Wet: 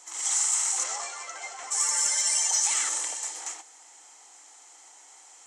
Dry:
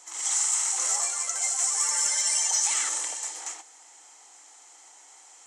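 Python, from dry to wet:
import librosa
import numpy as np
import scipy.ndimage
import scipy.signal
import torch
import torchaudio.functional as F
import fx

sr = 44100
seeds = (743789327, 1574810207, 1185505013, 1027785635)

y = fx.lowpass(x, sr, hz=fx.line((0.83, 5400.0), (1.7, 2400.0)), slope=12, at=(0.83, 1.7), fade=0.02)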